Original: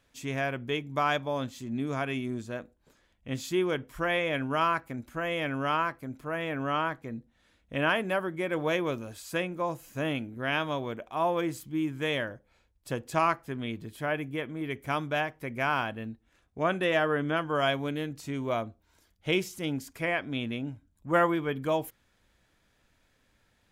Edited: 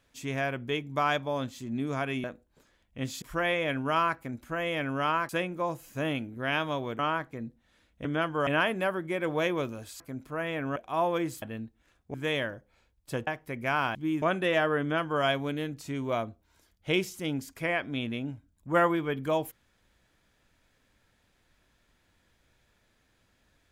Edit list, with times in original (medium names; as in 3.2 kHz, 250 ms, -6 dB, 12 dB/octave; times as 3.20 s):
2.24–2.54 s: delete
3.52–3.87 s: delete
5.94–6.70 s: swap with 9.29–10.99 s
11.65–11.92 s: swap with 15.89–16.61 s
13.05–15.21 s: delete
17.20–17.62 s: copy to 7.76 s